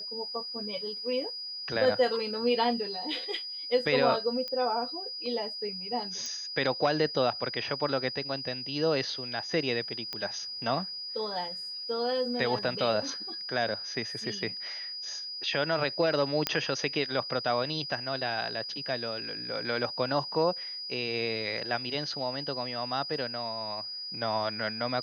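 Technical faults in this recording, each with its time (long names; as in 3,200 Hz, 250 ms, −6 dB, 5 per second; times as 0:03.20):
whistle 4,900 Hz −36 dBFS
0:04.48: click −23 dBFS
0:06.26: click −23 dBFS
0:10.13: click −20 dBFS
0:16.47: click −9 dBFS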